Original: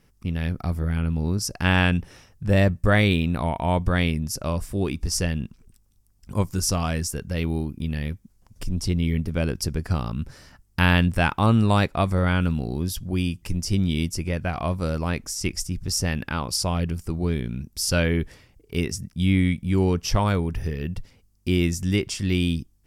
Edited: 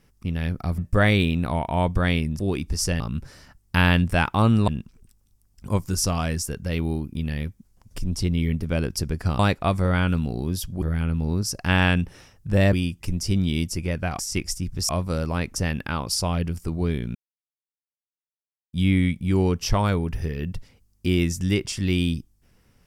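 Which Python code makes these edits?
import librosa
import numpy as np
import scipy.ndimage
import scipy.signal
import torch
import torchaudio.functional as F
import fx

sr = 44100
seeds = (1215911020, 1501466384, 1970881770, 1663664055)

y = fx.edit(x, sr, fx.move(start_s=0.78, length_s=1.91, to_s=13.15),
    fx.cut(start_s=4.3, length_s=0.42),
    fx.move(start_s=10.04, length_s=1.68, to_s=5.33),
    fx.move(start_s=14.61, length_s=0.67, to_s=15.98),
    fx.silence(start_s=17.57, length_s=1.58), tone=tone)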